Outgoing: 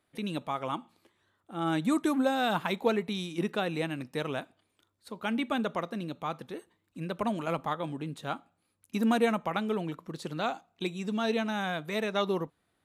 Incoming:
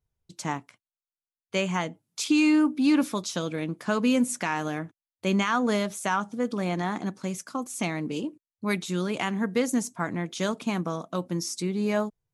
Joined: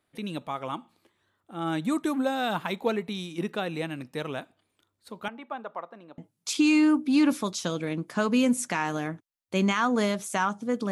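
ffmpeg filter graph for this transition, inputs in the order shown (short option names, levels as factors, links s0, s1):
-filter_complex "[0:a]asettb=1/sr,asplit=3[s0][s1][s2];[s0]atrim=end=5.284[s3];[s1]atrim=start=5.28:end=6.18,asetpts=PTS-STARTPTS,afade=t=in:d=0.004:c=qsin,afade=t=out:st=0.896:d=0.004:c=qsin,bandpass=f=890:t=q:w=1.6:csg=0[s4];[s2]atrim=start=6.176[s5];[s3][s4]acrossfade=d=0.004:c1=hsin:c2=qsin[s6];[s6][s5]acrossfade=d=0.004:c1=qsin:c2=hsin,apad=whole_dur=10.91,atrim=end=10.91,atrim=end=6.182[s7];[1:a]atrim=start=1.888:end=6.62[s8];[s7][s8]acrossfade=d=0.004:c1=hsin:c2=hsin"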